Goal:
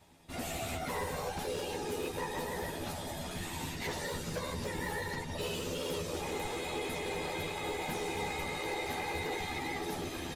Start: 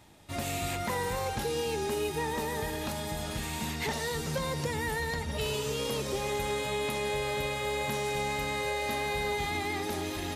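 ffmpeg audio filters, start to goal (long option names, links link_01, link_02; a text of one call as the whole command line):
ffmpeg -i in.wav -filter_complex "[0:a]afftfilt=real='hypot(re,im)*cos(2*PI*random(0))':imag='hypot(re,im)*sin(2*PI*random(1))':win_size=512:overlap=0.75,aeval=exprs='0.0299*(abs(mod(val(0)/0.0299+3,4)-2)-1)':channel_layout=same,asplit=2[link_01][link_02];[link_02]adelay=12,volume=-4dB[link_03];[link_01][link_03]amix=inputs=2:normalize=0" out.wav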